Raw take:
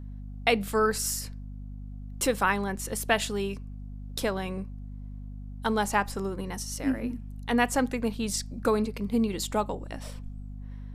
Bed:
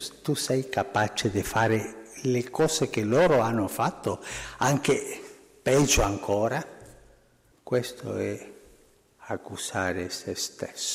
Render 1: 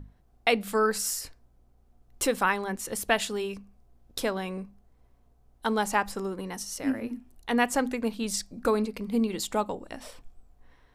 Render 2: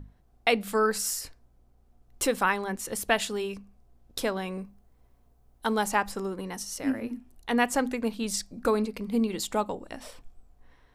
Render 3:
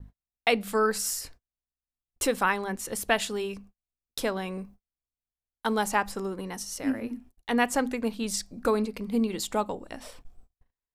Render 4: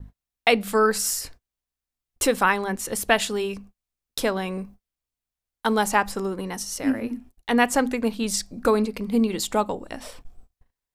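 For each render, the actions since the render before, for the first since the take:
hum notches 50/100/150/200/250 Hz
4.52–5.89 s: treble shelf 11 kHz +7 dB
gate -48 dBFS, range -38 dB
trim +5 dB

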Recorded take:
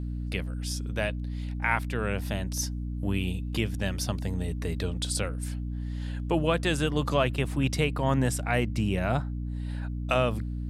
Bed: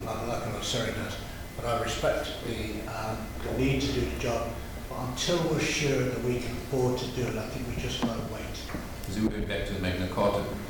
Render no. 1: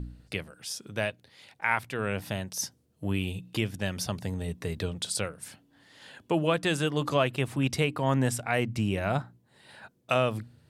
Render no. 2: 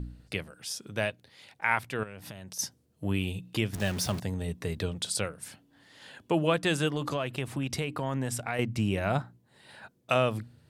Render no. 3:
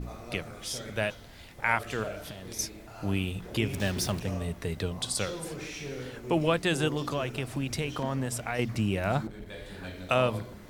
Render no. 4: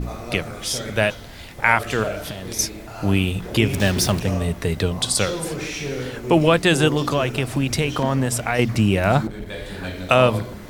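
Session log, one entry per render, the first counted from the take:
de-hum 60 Hz, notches 5
2.03–2.59 s: compression, threshold -39 dBFS; 3.73–4.20 s: jump at every zero crossing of -34.5 dBFS; 6.90–8.59 s: compression 4:1, threshold -27 dBFS
add bed -11.5 dB
trim +10.5 dB; peak limiter -2 dBFS, peak gain reduction 1.5 dB

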